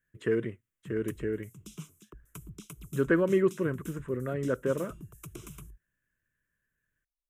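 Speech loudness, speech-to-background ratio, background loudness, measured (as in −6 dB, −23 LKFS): −30.5 LKFS, 17.5 dB, −48.0 LKFS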